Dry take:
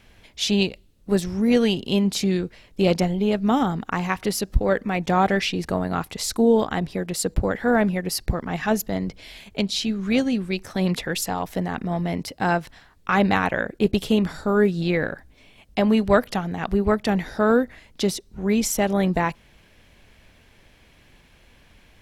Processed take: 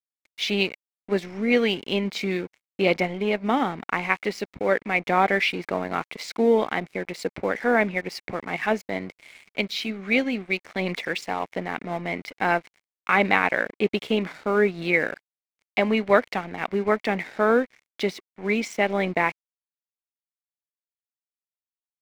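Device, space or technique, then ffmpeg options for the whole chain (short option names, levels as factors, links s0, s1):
pocket radio on a weak battery: -af "highpass=270,lowpass=3900,aeval=exprs='sgn(val(0))*max(abs(val(0))-0.00668,0)':c=same,equalizer=f=2200:t=o:w=0.33:g=12"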